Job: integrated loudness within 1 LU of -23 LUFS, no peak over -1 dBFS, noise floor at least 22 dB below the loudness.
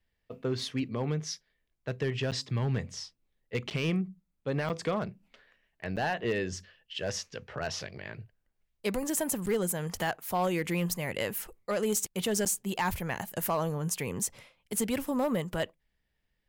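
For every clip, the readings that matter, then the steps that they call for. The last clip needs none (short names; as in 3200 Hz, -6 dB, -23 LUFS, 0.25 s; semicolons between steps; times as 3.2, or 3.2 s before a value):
clipped 0.6%; flat tops at -22.0 dBFS; dropouts 6; longest dropout 8.3 ms; loudness -32.5 LUFS; peak -22.0 dBFS; loudness target -23.0 LUFS
-> clip repair -22 dBFS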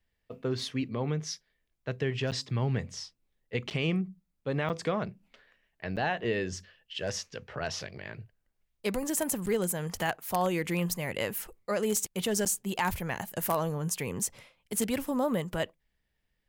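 clipped 0.0%; dropouts 6; longest dropout 8.3 ms
-> interpolate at 2.31/3.7/4.69/5.96/9.46/12.45, 8.3 ms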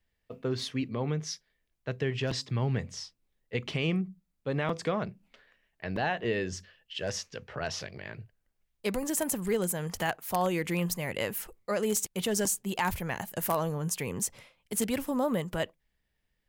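dropouts 0; loudness -32.0 LUFS; peak -13.0 dBFS; loudness target -23.0 LUFS
-> gain +9 dB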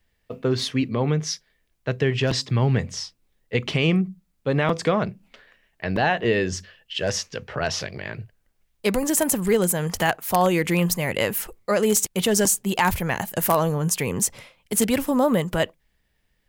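loudness -23.0 LUFS; peak -4.0 dBFS; noise floor -70 dBFS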